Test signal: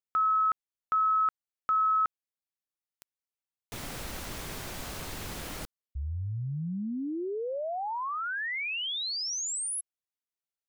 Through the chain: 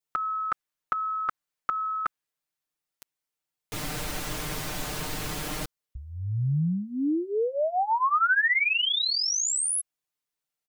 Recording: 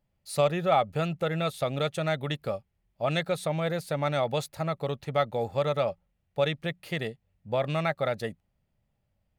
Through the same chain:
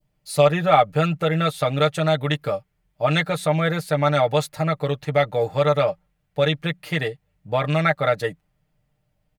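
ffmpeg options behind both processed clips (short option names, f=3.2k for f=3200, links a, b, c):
-af "aecho=1:1:6.6:0.78,adynamicequalizer=threshold=0.0112:dfrequency=1500:dqfactor=1:tfrequency=1500:tqfactor=1:attack=5:release=100:ratio=0.375:range=2.5:mode=boostabove:tftype=bell,volume=4dB"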